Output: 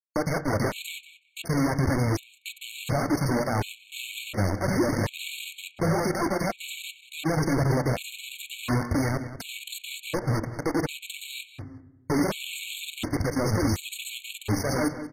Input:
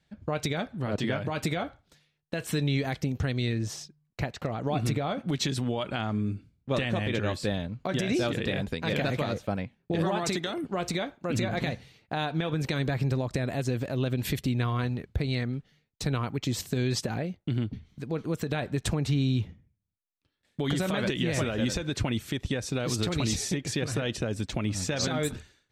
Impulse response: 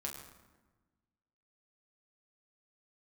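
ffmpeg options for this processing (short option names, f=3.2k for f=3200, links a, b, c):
-filter_complex "[0:a]aeval=exprs='val(0)+0.5*0.00708*sgn(val(0))':c=same,highpass=f=56:p=1,acrossover=split=450[a][b];[b]alimiter=level_in=2dB:limit=-24dB:level=0:latency=1:release=83,volume=-2dB[c];[a][c]amix=inputs=2:normalize=0,acontrast=64,acrusher=bits=3:mix=0:aa=0.000001,flanger=delay=1.3:depth=2.3:regen=-6:speed=2:shape=sinusoidal,asoftclip=type=hard:threshold=-21.5dB,atempo=1.7,asplit=2[d][e];[e]adelay=185,lowpass=f=4.6k:p=1,volume=-12.5dB,asplit=2[f][g];[g]adelay=185,lowpass=f=4.6k:p=1,volume=0.15[h];[d][f][h]amix=inputs=3:normalize=0,asplit=2[i][j];[1:a]atrim=start_sample=2205,asetrate=61740,aresample=44100,lowpass=3.1k[k];[j][k]afir=irnorm=-1:irlink=0,volume=-3dB[l];[i][l]amix=inputs=2:normalize=0,aresample=32000,aresample=44100,afftfilt=real='re*gt(sin(2*PI*0.69*pts/sr)*(1-2*mod(floor(b*sr/1024/2200),2)),0)':imag='im*gt(sin(2*PI*0.69*pts/sr)*(1-2*mod(floor(b*sr/1024/2200),2)),0)':win_size=1024:overlap=0.75"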